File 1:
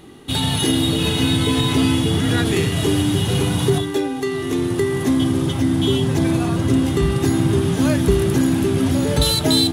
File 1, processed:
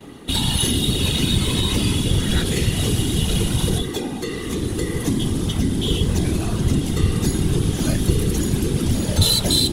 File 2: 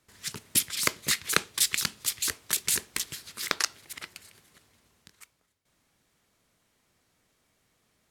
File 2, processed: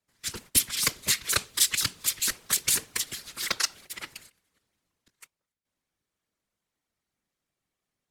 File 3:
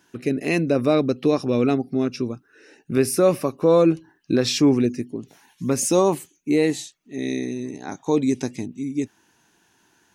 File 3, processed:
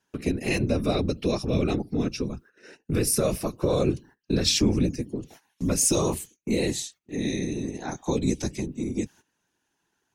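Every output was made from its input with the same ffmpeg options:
-filter_complex "[0:a]afftfilt=real='hypot(re,im)*cos(2*PI*random(0))':imag='hypot(re,im)*sin(2*PI*random(1))':win_size=512:overlap=0.75,acrossover=split=160|3000[a][b][c];[b]acompressor=threshold=-41dB:ratio=2[d];[a][d][c]amix=inputs=3:normalize=0,agate=range=-17dB:threshold=-56dB:ratio=16:detection=peak,volume=8.5dB"

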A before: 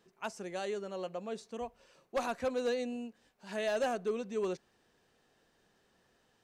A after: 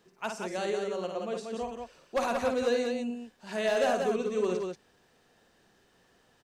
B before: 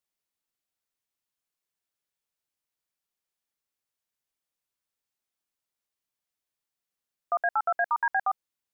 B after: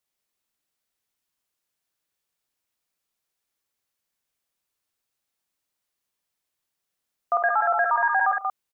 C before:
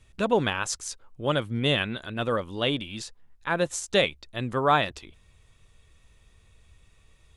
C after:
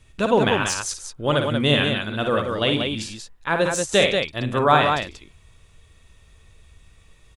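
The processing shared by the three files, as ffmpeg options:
-filter_complex "[0:a]aecho=1:1:55|101|146|184:0.501|0.112|0.119|0.562,acrossover=split=3500[a][b];[b]aeval=exprs='clip(val(0),-1,0.0708)':c=same[c];[a][c]amix=inputs=2:normalize=0,volume=4dB"

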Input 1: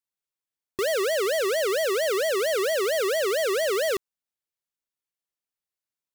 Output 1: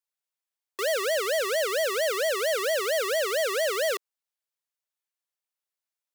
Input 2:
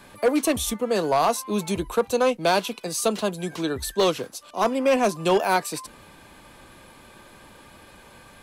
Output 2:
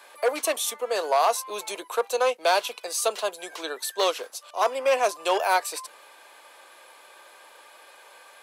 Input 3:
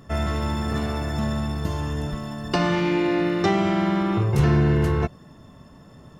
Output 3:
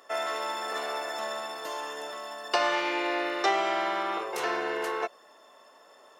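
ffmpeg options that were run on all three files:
-af "highpass=f=490:w=0.5412,highpass=f=490:w=1.3066"

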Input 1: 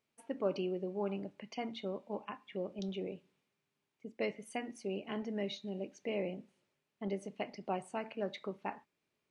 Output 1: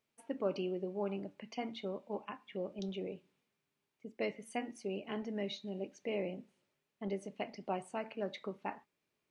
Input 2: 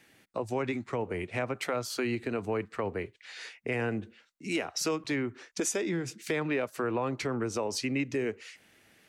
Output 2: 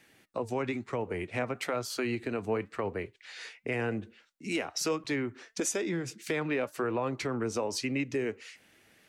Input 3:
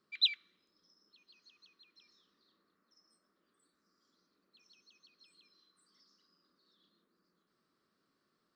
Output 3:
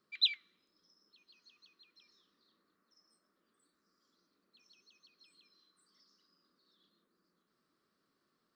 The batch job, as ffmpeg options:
-af "flanger=delay=1.5:depth=3.1:regen=87:speed=1:shape=triangular,volume=4dB"

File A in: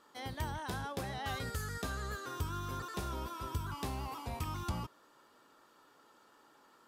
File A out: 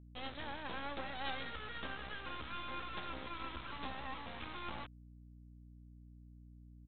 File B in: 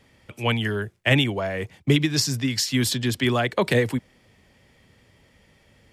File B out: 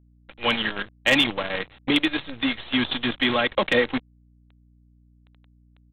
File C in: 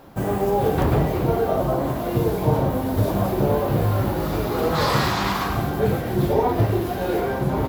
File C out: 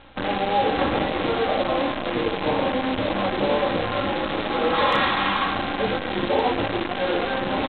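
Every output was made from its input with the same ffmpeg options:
-af "aemphasis=mode=production:type=bsi,bandreject=f=50:t=h:w=6,bandreject=f=100:t=h:w=6,bandreject=f=150:t=h:w=6,aecho=1:1:3.7:0.61,aresample=8000,acrusher=bits=5:dc=4:mix=0:aa=0.000001,aresample=44100,aeval=exprs='val(0)+0.00178*(sin(2*PI*60*n/s)+sin(2*PI*2*60*n/s)/2+sin(2*PI*3*60*n/s)/3+sin(2*PI*4*60*n/s)/4+sin(2*PI*5*60*n/s)/5)':c=same,asoftclip=type=hard:threshold=-9.5dB"

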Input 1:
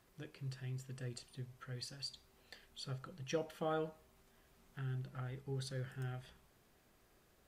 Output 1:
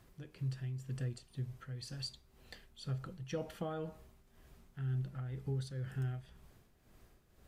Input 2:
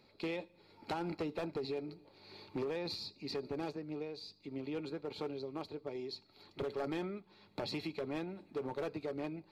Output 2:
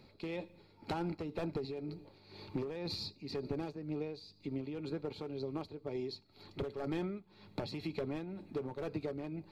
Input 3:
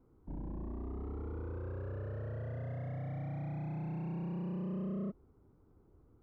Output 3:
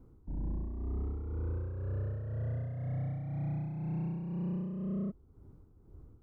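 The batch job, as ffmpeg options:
-af "lowshelf=f=200:g=11,tremolo=f=2:d=0.62,acompressor=threshold=-39dB:ratio=2,volume=3dB"

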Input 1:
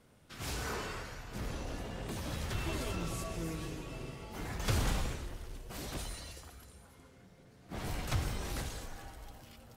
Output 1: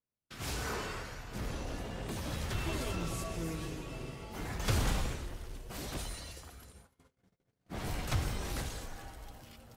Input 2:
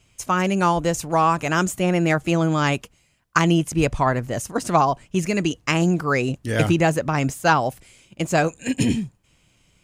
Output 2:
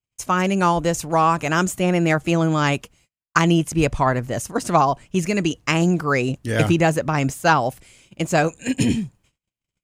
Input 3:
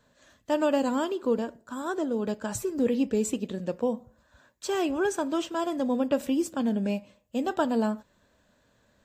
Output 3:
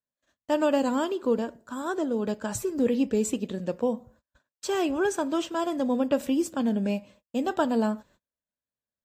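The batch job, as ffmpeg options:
-af "agate=range=-35dB:threshold=-55dB:ratio=16:detection=peak,volume=1dB"

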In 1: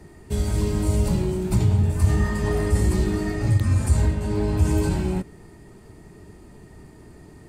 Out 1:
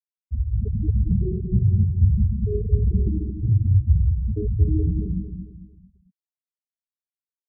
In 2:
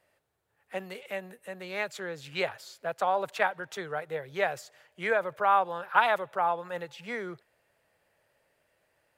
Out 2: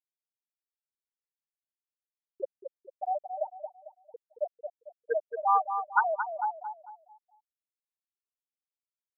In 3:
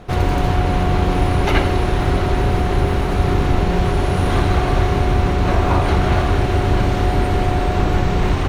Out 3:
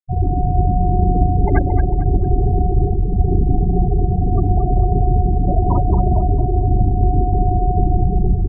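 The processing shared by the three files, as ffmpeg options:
-filter_complex "[0:a]afftfilt=real='re*gte(hypot(re,im),0.447)':imag='im*gte(hypot(re,im),0.447)':win_size=1024:overlap=0.75,lowpass=2.9k,asplit=2[a][b];[b]adelay=224,lowpass=f=1.8k:p=1,volume=-7dB,asplit=2[c][d];[d]adelay=224,lowpass=f=1.8k:p=1,volume=0.38,asplit=2[e][f];[f]adelay=224,lowpass=f=1.8k:p=1,volume=0.38,asplit=2[g][h];[h]adelay=224,lowpass=f=1.8k:p=1,volume=0.38[i];[a][c][e][g][i]amix=inputs=5:normalize=0,volume=1dB"

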